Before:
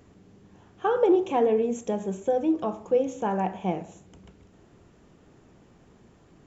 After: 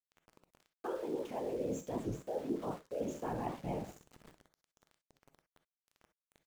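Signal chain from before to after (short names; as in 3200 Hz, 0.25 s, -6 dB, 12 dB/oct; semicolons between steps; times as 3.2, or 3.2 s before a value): dynamic EQ 420 Hz, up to +3 dB, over -35 dBFS, Q 2.1; reverse; compressor 20:1, threshold -29 dBFS, peak gain reduction 16.5 dB; reverse; whisperiser; sample gate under -45.5 dBFS; non-linear reverb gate 80 ms rising, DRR 10 dB; record warp 78 rpm, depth 250 cents; gain -5.5 dB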